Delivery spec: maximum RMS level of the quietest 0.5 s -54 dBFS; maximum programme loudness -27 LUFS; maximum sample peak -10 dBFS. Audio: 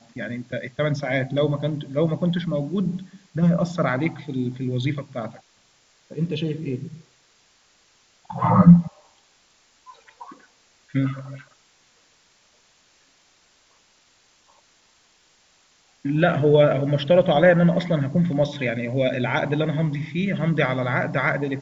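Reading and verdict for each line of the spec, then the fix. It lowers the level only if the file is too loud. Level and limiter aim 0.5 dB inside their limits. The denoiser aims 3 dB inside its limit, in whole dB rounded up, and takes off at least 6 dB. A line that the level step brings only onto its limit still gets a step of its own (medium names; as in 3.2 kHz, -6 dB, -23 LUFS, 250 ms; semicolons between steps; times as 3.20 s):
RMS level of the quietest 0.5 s -60 dBFS: pass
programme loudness -21.5 LUFS: fail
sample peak -2.0 dBFS: fail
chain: trim -6 dB; peak limiter -10.5 dBFS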